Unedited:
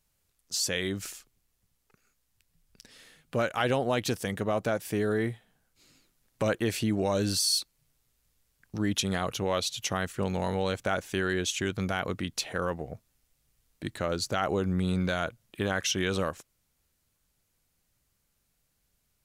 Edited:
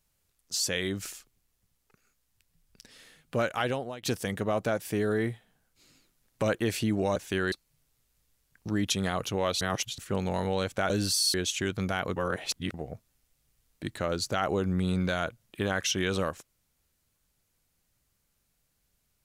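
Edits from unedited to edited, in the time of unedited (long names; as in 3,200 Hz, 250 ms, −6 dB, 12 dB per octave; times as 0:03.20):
0:03.53–0:04.03: fade out, to −23.5 dB
0:07.16–0:07.60: swap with 0:10.98–0:11.34
0:09.69–0:10.06: reverse
0:12.16–0:12.74: reverse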